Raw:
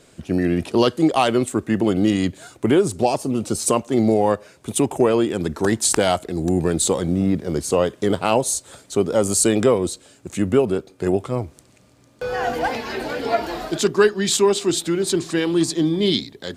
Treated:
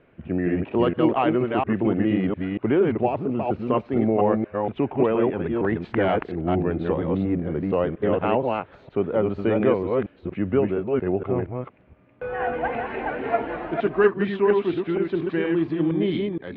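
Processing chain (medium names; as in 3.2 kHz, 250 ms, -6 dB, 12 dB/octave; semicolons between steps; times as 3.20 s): chunks repeated in reverse 234 ms, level -2.5 dB; steep low-pass 2.6 kHz 36 dB/octave; trim -4.5 dB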